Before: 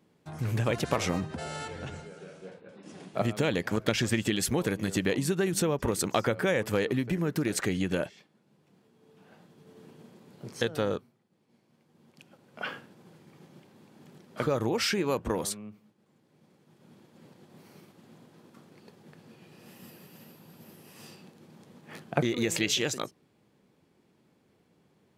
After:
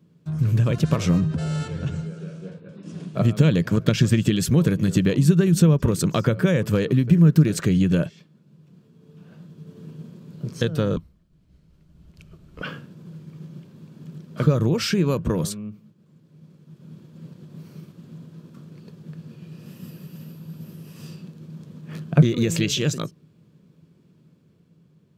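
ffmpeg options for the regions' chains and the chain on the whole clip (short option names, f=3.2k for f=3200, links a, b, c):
-filter_complex "[0:a]asettb=1/sr,asplit=3[a][b][c];[a]atrim=end=10.964[d];[b]atrim=start=10.96:end=12.62,asetpts=PTS-STARTPTS,afade=t=in:d=0.004:c=qsin,afade=t=out:st=1.656:d=0.004:c=qsin,equalizer=f=69:w=0.44:g=6,afreqshift=-170[e];[c]atrim=start=12.616[f];[d][e]acrossfade=d=0.004:c1=hsin:c2=qsin[g];[g][f]acrossfade=d=0.004:c1=qsin:c2=hsin,equalizer=f=160:t=o:w=0.33:g=10,equalizer=f=800:t=o:w=0.33:g=-11,equalizer=f=2k:t=o:w=0.33:g=-6,equalizer=f=10k:t=o:w=0.33:g=-5,dynaudnorm=f=190:g=11:m=3dB,equalizer=f=110:t=o:w=2.2:g=9"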